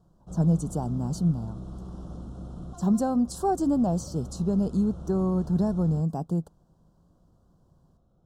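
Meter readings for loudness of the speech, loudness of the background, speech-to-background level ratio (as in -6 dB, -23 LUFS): -26.5 LUFS, -41.5 LUFS, 15.0 dB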